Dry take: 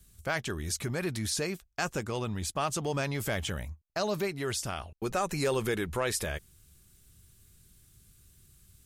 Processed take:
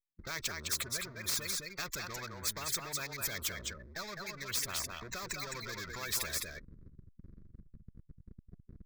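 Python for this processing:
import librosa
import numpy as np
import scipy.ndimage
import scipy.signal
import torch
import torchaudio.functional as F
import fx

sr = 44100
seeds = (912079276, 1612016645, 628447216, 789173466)

p1 = fx.delta_hold(x, sr, step_db=-45.5)
p2 = fx.spec_gate(p1, sr, threshold_db=-15, keep='strong')
p3 = fx.tone_stack(p2, sr, knobs='10-0-10')
p4 = fx.leveller(p3, sr, passes=1)
p5 = fx.fixed_phaser(p4, sr, hz=2900.0, stages=6)
p6 = p5 + fx.echo_single(p5, sr, ms=209, db=-10.5, dry=0)
p7 = fx.spectral_comp(p6, sr, ratio=4.0)
y = F.gain(torch.from_numpy(p7), 5.5).numpy()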